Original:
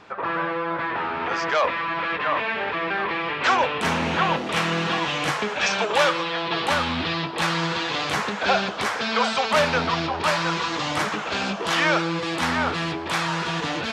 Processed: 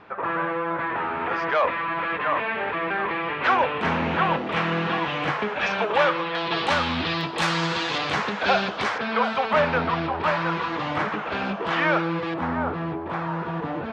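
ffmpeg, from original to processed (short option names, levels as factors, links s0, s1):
-af "asetnsamples=n=441:p=0,asendcmd='6.35 lowpass f 5800;7.21 lowpass f 10000;7.98 lowpass f 4600;8.98 lowpass f 2200;12.34 lowpass f 1100',lowpass=2500"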